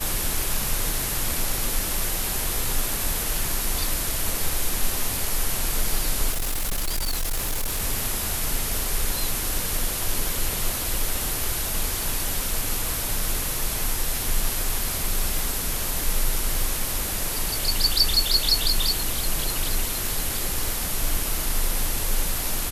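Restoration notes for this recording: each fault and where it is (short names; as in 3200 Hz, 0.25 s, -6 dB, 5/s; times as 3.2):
6.31–7.82 clipped -21.5 dBFS
15.39 pop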